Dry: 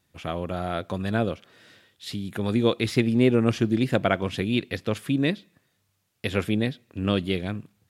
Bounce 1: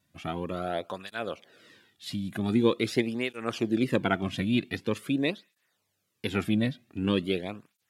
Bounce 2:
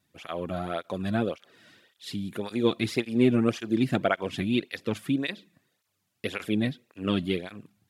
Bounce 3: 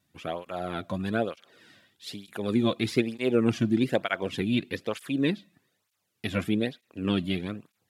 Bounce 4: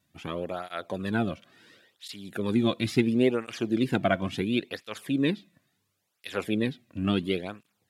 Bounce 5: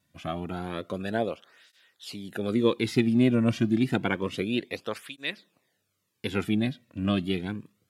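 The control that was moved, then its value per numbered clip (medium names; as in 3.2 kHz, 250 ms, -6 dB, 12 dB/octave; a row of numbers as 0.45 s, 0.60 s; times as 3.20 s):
cancelling through-zero flanger, nulls at: 0.45 Hz, 1.8 Hz, 1.1 Hz, 0.72 Hz, 0.29 Hz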